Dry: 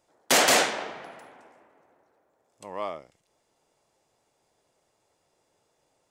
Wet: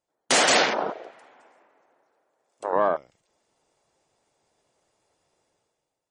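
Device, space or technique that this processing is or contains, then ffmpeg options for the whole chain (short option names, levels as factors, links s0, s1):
low-bitrate web radio: -filter_complex "[0:a]afwtdn=0.02,asettb=1/sr,asplit=3[s0][s1][s2];[s0]atrim=end=0.904[s3];[s1]atrim=start=0.9:end=2.73,asetpts=PTS-STARTPTS,afade=t=in:d=0.004:c=qsin,afade=t=out:st=1.826:d=0.004:c=qsin,highpass=f=430:p=1[s4];[s2]atrim=start=2.726[s5];[s3][s4]acrossfade=d=0.004:c1=hsin:c2=qsin[s6];[s6][s5]acrossfade=d=0.004:c1=qsin:c2=hsin,dynaudnorm=f=130:g=9:m=5.31,alimiter=limit=0.266:level=0:latency=1:release=235,volume=1.33" -ar 48000 -c:a libmp3lame -b:a 40k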